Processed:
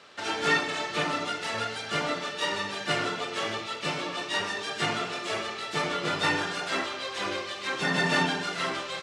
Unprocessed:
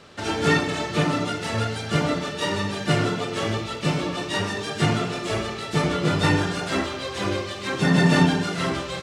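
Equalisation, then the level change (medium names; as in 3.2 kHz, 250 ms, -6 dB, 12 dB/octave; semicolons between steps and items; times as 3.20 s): high-pass 900 Hz 6 dB/octave; treble shelf 8.7 kHz -10.5 dB; 0.0 dB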